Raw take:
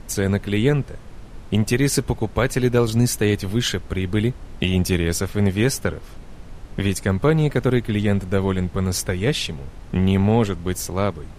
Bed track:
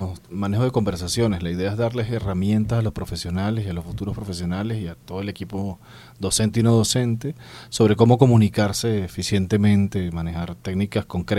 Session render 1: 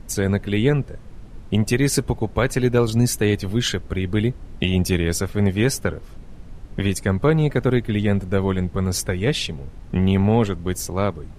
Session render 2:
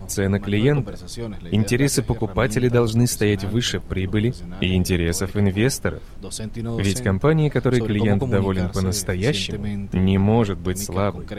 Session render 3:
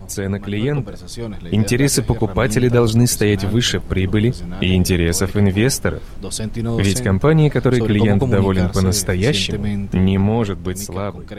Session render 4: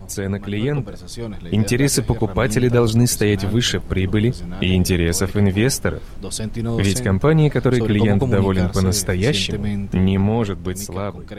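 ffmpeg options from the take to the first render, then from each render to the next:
-af "afftdn=nr=6:nf=-40"
-filter_complex "[1:a]volume=-10.5dB[a];[0:a][a]amix=inputs=2:normalize=0"
-af "alimiter=limit=-10dB:level=0:latency=1:release=41,dynaudnorm=f=160:g=17:m=6.5dB"
-af "volume=-1.5dB"

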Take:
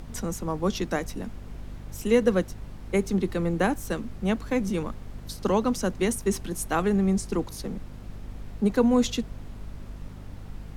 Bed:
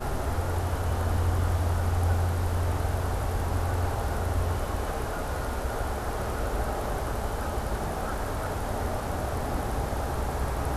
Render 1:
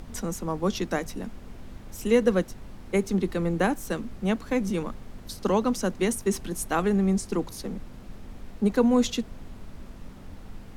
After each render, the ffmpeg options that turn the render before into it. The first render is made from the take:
-af "bandreject=f=50:t=h:w=6,bandreject=f=100:t=h:w=6,bandreject=f=150:t=h:w=6"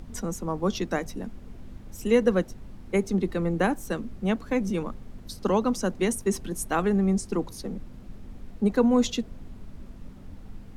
-af "afftdn=nr=6:nf=-44"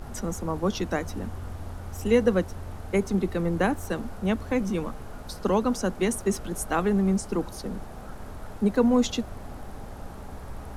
-filter_complex "[1:a]volume=-12.5dB[a];[0:a][a]amix=inputs=2:normalize=0"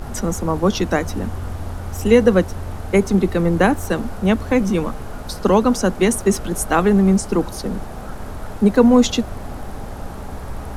-af "volume=9dB,alimiter=limit=-2dB:level=0:latency=1"

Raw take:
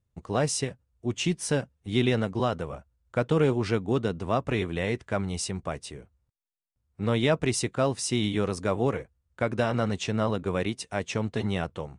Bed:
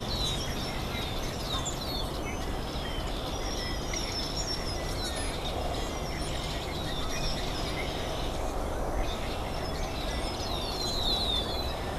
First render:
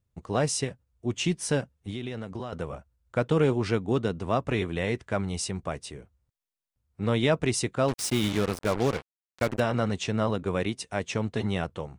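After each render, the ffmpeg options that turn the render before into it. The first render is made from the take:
-filter_complex "[0:a]asettb=1/sr,asplit=3[a][b][c];[a]atrim=end=1.904[d];[b]atrim=start=1.9:end=2.53,asetpts=PTS-STARTPTS,afade=t=in:d=0.004:c=qsin,afade=t=out:st=0.626:d=0.004:c=qsin,acompressor=threshold=-31dB:ratio=6:attack=3.2:release=140:knee=1:detection=peak[e];[c]atrim=start=2.526[f];[d][e]acrossfade=d=0.004:c1=hsin:c2=qsin[g];[g][f]acrossfade=d=0.004:c1=qsin:c2=hsin,asettb=1/sr,asplit=3[h][i][j];[h]atrim=end=7.884[k];[i]atrim=start=7.88:end=9.6,asetpts=PTS-STARTPTS,afade=t=in:d=0.004:c=qsin,afade=t=out:st=1.716:d=0.004:c=qsin,acrusher=bits=4:mix=0:aa=0.5[l];[j]atrim=start=9.596[m];[k][l]acrossfade=d=0.004:c1=hsin:c2=qsin[n];[n][m]acrossfade=d=0.004:c1=qsin:c2=hsin"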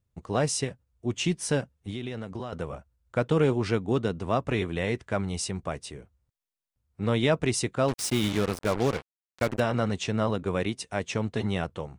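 -af anull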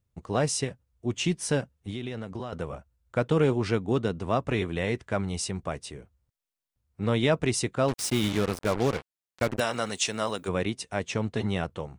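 -filter_complex "[0:a]asplit=3[a][b][c];[a]afade=t=out:st=9.59:d=0.02[d];[b]aemphasis=mode=production:type=riaa,afade=t=in:st=9.59:d=0.02,afade=t=out:st=10.47:d=0.02[e];[c]afade=t=in:st=10.47:d=0.02[f];[d][e][f]amix=inputs=3:normalize=0"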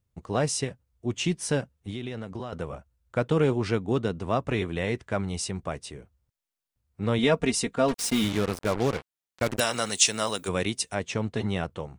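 -filter_complex "[0:a]asettb=1/sr,asplit=3[a][b][c];[a]atrim=end=7.184[d];[b]atrim=start=7.18:end=8.24,asetpts=PTS-STARTPTS,afade=t=in:d=0.004:c=qsin,afade=t=out:st=1.056:d=0.004:c=qsin,aecho=1:1:4.3:0.7,atrim=end_sample=46746[e];[c]atrim=start=8.236[f];[d][e]acrossfade=d=0.004:c1=hsin:c2=qsin[g];[g][f]acrossfade=d=0.004:c1=qsin:c2=hsin,asettb=1/sr,asplit=3[h][i][j];[h]atrim=end=9.464[k];[i]atrim=start=9.46:end=10.95,asetpts=PTS-STARTPTS,afade=t=in:d=0.004:c=qsin,afade=t=out:st=1.486:d=0.004:c=qsin,highshelf=f=3.7k:g=11.5[l];[j]atrim=start=10.946[m];[k][l]acrossfade=d=0.004:c1=hsin:c2=qsin[n];[n][m]acrossfade=d=0.004:c1=qsin:c2=hsin"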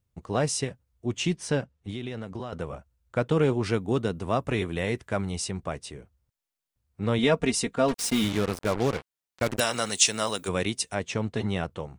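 -filter_complex "[0:a]asettb=1/sr,asplit=3[a][b][c];[a]atrim=end=1.364[d];[b]atrim=start=1.36:end=1.89,asetpts=PTS-STARTPTS,afade=t=in:d=0.004:c=qsin,afade=t=out:st=0.526:d=0.004:c=qsin,adynamicsmooth=sensitivity=1:basefreq=8k[e];[c]atrim=start=1.886[f];[d][e]acrossfade=d=0.004:c1=hsin:c2=qsin[g];[g][f]acrossfade=d=0.004:c1=qsin:c2=hsin,asettb=1/sr,asplit=3[h][i][j];[h]atrim=end=3.634[k];[i]atrim=start=3.63:end=5.31,asetpts=PTS-STARTPTS,afade=t=in:d=0.004:c=qsin,afade=t=out:st=1.676:d=0.004:c=qsin,equalizer=f=13k:t=o:w=0.77:g=11.5[l];[j]atrim=start=5.306[m];[k][l]acrossfade=d=0.004:c1=hsin:c2=qsin[n];[n][m]acrossfade=d=0.004:c1=qsin:c2=hsin"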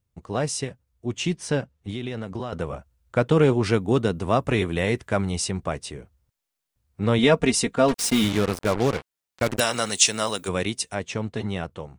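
-af "dynaudnorm=f=390:g=9:m=5dB"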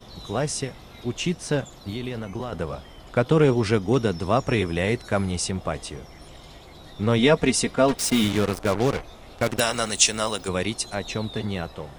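-filter_complex "[1:a]volume=-11.5dB[a];[0:a][a]amix=inputs=2:normalize=0"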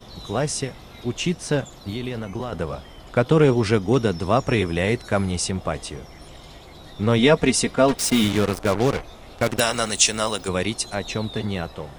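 -af "volume=2dB,alimiter=limit=-3dB:level=0:latency=1"

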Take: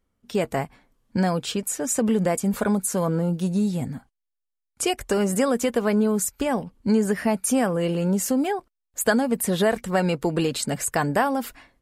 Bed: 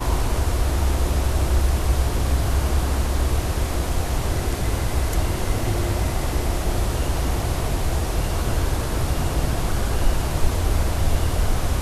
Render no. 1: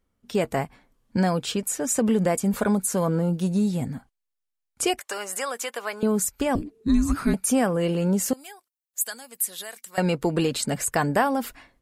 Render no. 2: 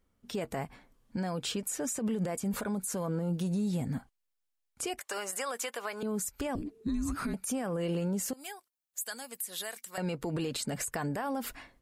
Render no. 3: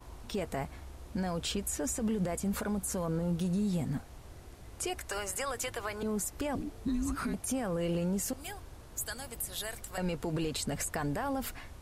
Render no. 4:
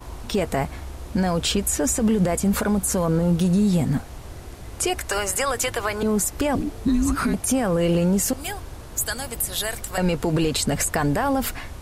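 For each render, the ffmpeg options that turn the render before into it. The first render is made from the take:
-filter_complex "[0:a]asettb=1/sr,asplit=3[a][b][c];[a]atrim=end=4.994[d];[b]atrim=start=4.99:end=6.03,asetpts=PTS-STARTPTS,afade=t=in:d=0.004:c=qsin,afade=t=out:st=1.036:d=0.004:c=qsin,highpass=910[e];[c]atrim=start=6.026[f];[d][e]acrossfade=d=0.004:c1=hsin:c2=qsin[g];[g][f]acrossfade=d=0.004:c1=qsin:c2=hsin,asettb=1/sr,asplit=3[h][i][j];[h]atrim=end=6.554[k];[i]atrim=start=6.55:end=7.34,asetpts=PTS-STARTPTS,afade=t=in:d=0.004:c=qsin,afade=t=out:st=0.786:d=0.004:c=qsin,afreqshift=-470[l];[j]atrim=start=7.336[m];[k][l]acrossfade=d=0.004:c1=hsin:c2=qsin[n];[n][m]acrossfade=d=0.004:c1=qsin:c2=hsin,asettb=1/sr,asplit=3[o][p][q];[o]atrim=end=8.334[r];[p]atrim=start=8.33:end=9.98,asetpts=PTS-STARTPTS,afade=t=in:d=0.004:c=qsin,afade=t=out:st=1.646:d=0.004:c=qsin,aderivative[s];[q]atrim=start=9.976[t];[r][s]acrossfade=d=0.004:c1=hsin:c2=qsin[u];[u][t]acrossfade=d=0.004:c1=qsin:c2=hsin"
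-af "acompressor=threshold=-23dB:ratio=6,alimiter=level_in=1dB:limit=-24dB:level=0:latency=1:release=115,volume=-1dB"
-filter_complex "[1:a]volume=-27dB[a];[0:a][a]amix=inputs=2:normalize=0"
-af "volume=12dB"

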